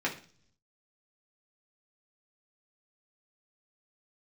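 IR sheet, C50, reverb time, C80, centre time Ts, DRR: 11.5 dB, 0.45 s, 16.5 dB, 16 ms, −4.0 dB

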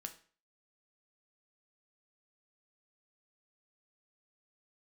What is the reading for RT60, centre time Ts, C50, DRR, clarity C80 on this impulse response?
0.40 s, 8 ms, 13.0 dB, 6.0 dB, 17.5 dB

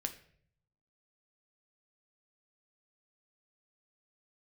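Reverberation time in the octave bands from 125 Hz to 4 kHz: 1.2, 0.80, 0.70, 0.50, 0.55, 0.45 seconds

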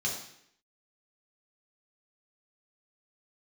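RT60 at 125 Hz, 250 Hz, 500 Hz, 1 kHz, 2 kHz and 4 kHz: 0.70, 0.75, 0.70, 0.70, 0.75, 0.70 seconds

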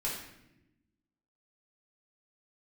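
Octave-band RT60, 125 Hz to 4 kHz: 1.5, 1.5, 1.1, 0.75, 0.85, 0.65 seconds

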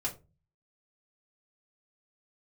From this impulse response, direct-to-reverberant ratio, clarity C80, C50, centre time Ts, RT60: −5.0 dB, 20.5 dB, 14.0 dB, 13 ms, 0.30 s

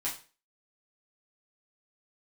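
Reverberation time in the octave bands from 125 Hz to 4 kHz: 0.35, 0.35, 0.40, 0.35, 0.35, 0.35 seconds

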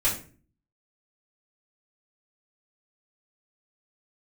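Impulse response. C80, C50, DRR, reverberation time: 13.0 dB, 8.0 dB, −8.5 dB, 0.40 s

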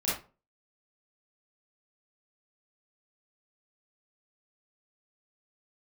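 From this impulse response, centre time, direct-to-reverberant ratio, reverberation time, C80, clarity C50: 49 ms, −9.0 dB, 0.35 s, 10.5 dB, 1.5 dB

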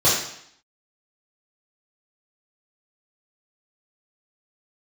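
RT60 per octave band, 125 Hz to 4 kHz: 0.70, 0.70, 0.65, 0.70, 0.70, 0.70 seconds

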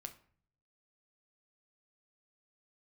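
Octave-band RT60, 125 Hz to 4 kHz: 1.0, 0.70, 0.55, 0.50, 0.45, 0.35 seconds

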